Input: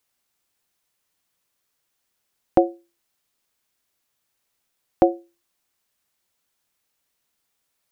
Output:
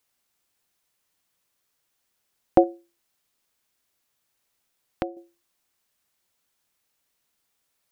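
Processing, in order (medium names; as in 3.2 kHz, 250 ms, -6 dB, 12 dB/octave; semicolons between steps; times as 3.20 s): 2.63–5.17 s: compression 12:1, threshold -26 dBFS, peak gain reduction 16 dB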